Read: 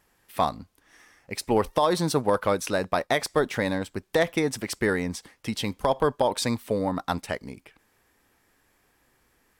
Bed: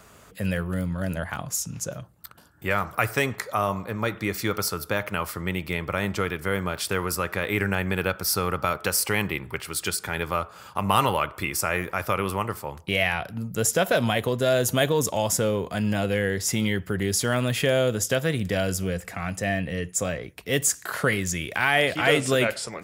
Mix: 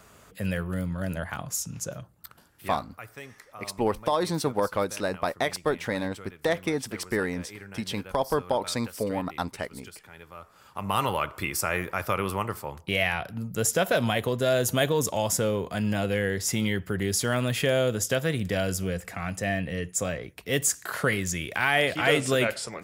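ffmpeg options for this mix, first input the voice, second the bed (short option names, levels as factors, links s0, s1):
-filter_complex "[0:a]adelay=2300,volume=0.708[s0];[1:a]volume=5.31,afade=t=out:st=2.3:d=0.5:silence=0.149624,afade=t=in:st=10.35:d=0.98:silence=0.141254[s1];[s0][s1]amix=inputs=2:normalize=0"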